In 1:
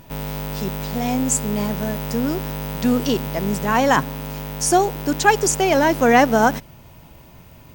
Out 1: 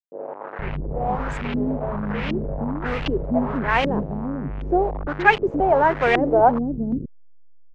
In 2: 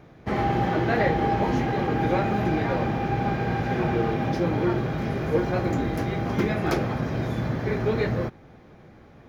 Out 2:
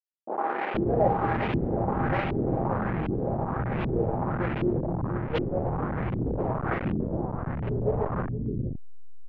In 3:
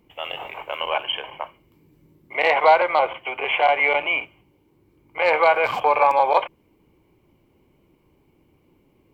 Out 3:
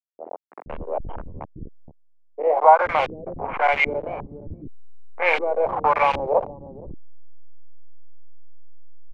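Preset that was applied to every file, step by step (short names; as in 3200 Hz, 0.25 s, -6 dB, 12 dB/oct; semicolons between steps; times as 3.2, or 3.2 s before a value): level-crossing sampler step -20.5 dBFS; low-pass opened by the level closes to 320 Hz, open at -14.5 dBFS; bands offset in time highs, lows 0.47 s, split 330 Hz; LFO low-pass saw up 1.3 Hz 310–3100 Hz; gain -2.5 dB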